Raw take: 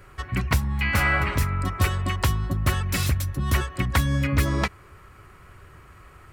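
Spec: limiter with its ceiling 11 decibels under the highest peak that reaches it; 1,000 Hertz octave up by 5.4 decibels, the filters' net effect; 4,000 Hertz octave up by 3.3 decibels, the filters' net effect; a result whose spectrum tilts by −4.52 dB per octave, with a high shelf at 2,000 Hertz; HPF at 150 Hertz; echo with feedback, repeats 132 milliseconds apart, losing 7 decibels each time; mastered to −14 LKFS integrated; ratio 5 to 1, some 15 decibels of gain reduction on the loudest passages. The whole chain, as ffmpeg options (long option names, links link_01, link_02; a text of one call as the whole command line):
ffmpeg -i in.wav -af "highpass=150,equalizer=frequency=1000:width_type=o:gain=7.5,highshelf=frequency=2000:gain=-5,equalizer=frequency=4000:width_type=o:gain=9,acompressor=threshold=-35dB:ratio=5,alimiter=level_in=5dB:limit=-24dB:level=0:latency=1,volume=-5dB,aecho=1:1:132|264|396|528|660:0.447|0.201|0.0905|0.0407|0.0183,volume=25.5dB" out.wav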